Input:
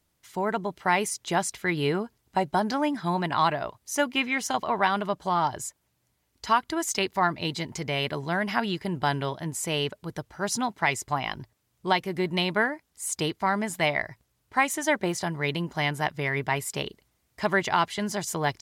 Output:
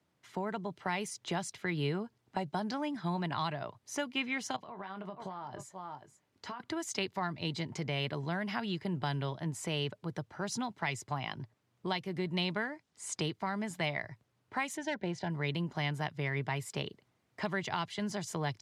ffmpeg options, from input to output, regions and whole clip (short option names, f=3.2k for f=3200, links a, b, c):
-filter_complex "[0:a]asettb=1/sr,asplit=3[a][b][c];[a]atrim=end=4.564[d];[b]atrim=start=4.56:end=6.6,asetpts=PTS-STARTPTS,afade=t=in:d=0.004:c=qsin,afade=t=out:st=2.036:d=0.004:c=qsin,aecho=1:1:479:0.106,atrim=end_sample=89964,acompressor=threshold=-37dB:ratio=12:attack=3.2:release=140:knee=1:detection=peak,asplit=2[e][f];[f]adelay=21,volume=-10dB[g];[e][g]amix=inputs=2:normalize=0,atrim=end_sample=89964[h];[c]atrim=start=6.596[i];[d][h]acrossfade=d=0.004:c1=hsin:c2=qsin[j];[j][i]acrossfade=d=0.004:c1=qsin:c2=hsin,asettb=1/sr,asplit=3[k][l][m];[k]atrim=end=12.424[n];[l]atrim=start=12.42:end=13.22,asetpts=PTS-STARTPTS,afade=t=in:d=0.004:c=qsin,afade=t=out:st=0.796:d=0.004:c=qsin,lowpass=7.3k,highshelf=f=5.7k:g=9[o];[m]atrim=start=13.216[p];[n][o]acrossfade=d=0.004:c1=hsin:c2=qsin[q];[q][p]acrossfade=d=0.004:c1=qsin:c2=hsin,asettb=1/sr,asplit=3[r][s][t];[r]atrim=end=14.774[u];[s]atrim=start=14.77:end=15.3,asetpts=PTS-STARTPTS,afade=t=in:d=0.004:c=qsin,afade=t=out:st=0.526:d=0.004:c=qsin,aeval=exprs='clip(val(0),-1,0.106)':c=same,adynamicsmooth=sensitivity=1.5:basefreq=4.4k,asuperstop=centerf=1200:order=12:qfactor=3.8[v];[t]atrim=start=15.296[w];[u][v]acrossfade=d=0.004:c1=hsin:c2=qsin[x];[x][w]acrossfade=d=0.004:c1=qsin:c2=hsin,highpass=f=100:w=0.5412,highpass=f=100:w=1.3066,aemphasis=mode=reproduction:type=75fm,acrossover=split=140|3000[y][z][aa];[z]acompressor=threshold=-39dB:ratio=2.5[ab];[y][ab][aa]amix=inputs=3:normalize=0"